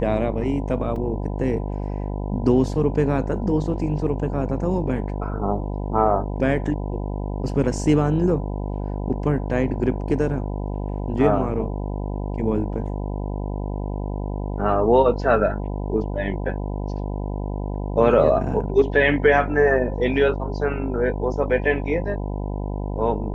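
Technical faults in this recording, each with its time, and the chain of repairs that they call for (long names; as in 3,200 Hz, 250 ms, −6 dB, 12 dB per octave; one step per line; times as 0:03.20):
mains buzz 50 Hz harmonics 20 −27 dBFS
0:00.96: drop-out 3 ms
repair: hum removal 50 Hz, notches 20
repair the gap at 0:00.96, 3 ms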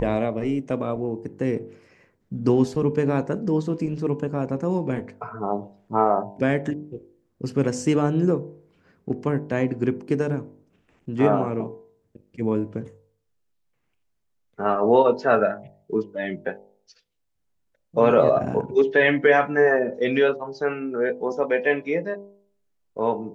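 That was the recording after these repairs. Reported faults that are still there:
none of them is left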